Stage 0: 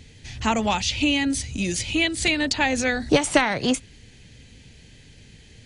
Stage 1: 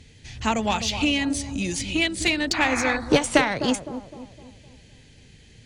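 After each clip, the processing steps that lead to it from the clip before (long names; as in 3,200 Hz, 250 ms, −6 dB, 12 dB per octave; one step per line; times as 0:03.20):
sound drawn into the spectrogram noise, 0:02.53–0:02.97, 660–2,600 Hz −27 dBFS
bucket-brigade delay 256 ms, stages 2,048, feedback 45%, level −9 dB
harmonic generator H 7 −29 dB, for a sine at −4.5 dBFS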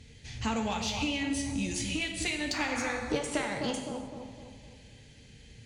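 downward compressor 3 to 1, threshold −27 dBFS, peak gain reduction 11.5 dB
reverb whose tail is shaped and stops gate 340 ms falling, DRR 3 dB
level −4.5 dB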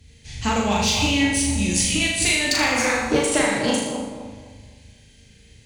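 high-shelf EQ 9,300 Hz +11.5 dB
on a send: flutter between parallel walls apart 6.7 metres, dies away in 0.74 s
on the sum: multiband upward and downward expander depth 40%
level +8.5 dB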